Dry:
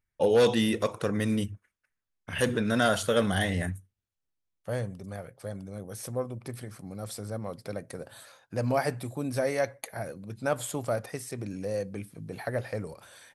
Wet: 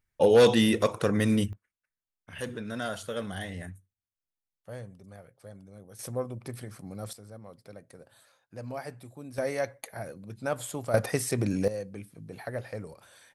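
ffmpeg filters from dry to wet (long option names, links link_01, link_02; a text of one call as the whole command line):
ffmpeg -i in.wav -af "asetnsamples=nb_out_samples=441:pad=0,asendcmd='1.53 volume volume -9.5dB;5.99 volume volume -0.5dB;7.13 volume volume -11dB;9.38 volume volume -2.5dB;10.94 volume volume 8.5dB;11.68 volume volume -4dB',volume=3dB" out.wav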